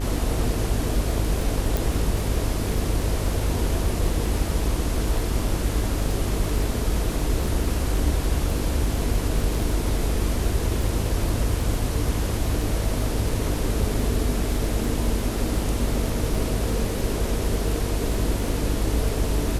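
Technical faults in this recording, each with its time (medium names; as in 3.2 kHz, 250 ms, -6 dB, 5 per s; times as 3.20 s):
buzz 50 Hz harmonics 37 -27 dBFS
crackle 12 per s -26 dBFS
1.77 s: pop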